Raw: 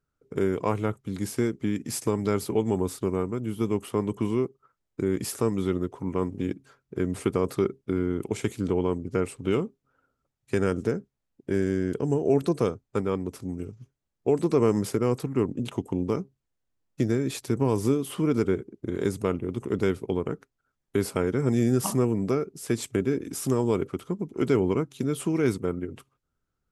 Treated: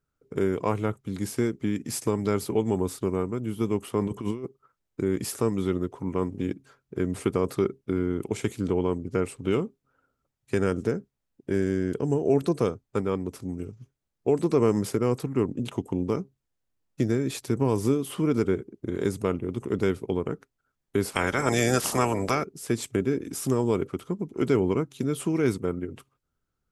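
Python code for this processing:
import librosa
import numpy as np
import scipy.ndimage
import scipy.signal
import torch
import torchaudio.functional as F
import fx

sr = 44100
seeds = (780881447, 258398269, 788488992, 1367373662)

y = fx.over_compress(x, sr, threshold_db=-29.0, ratio=-0.5, at=(4.01, 4.45))
y = fx.spec_clip(y, sr, under_db=22, at=(21.1, 22.43), fade=0.02)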